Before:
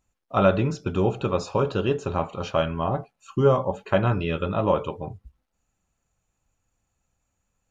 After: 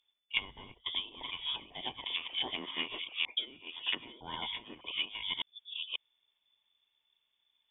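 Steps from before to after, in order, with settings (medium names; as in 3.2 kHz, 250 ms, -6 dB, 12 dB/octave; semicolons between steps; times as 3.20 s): chunks repeated in reverse 542 ms, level -1 dB; frequency inversion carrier 3.5 kHz; low-pass that closes with the level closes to 460 Hz, closed at -15 dBFS; trim -6 dB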